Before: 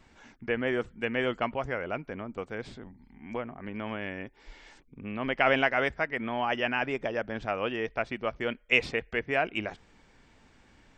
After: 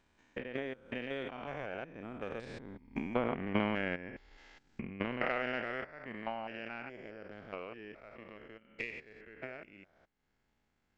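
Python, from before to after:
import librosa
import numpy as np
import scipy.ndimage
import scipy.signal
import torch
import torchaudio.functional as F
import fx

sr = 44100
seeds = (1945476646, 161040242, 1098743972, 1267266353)

y = fx.spec_steps(x, sr, hold_ms=200)
y = fx.doppler_pass(y, sr, speed_mps=23, closest_m=13.0, pass_at_s=3.33)
y = fx.transient(y, sr, attack_db=11, sustain_db=-7)
y = F.gain(torch.from_numpy(y), 3.5).numpy()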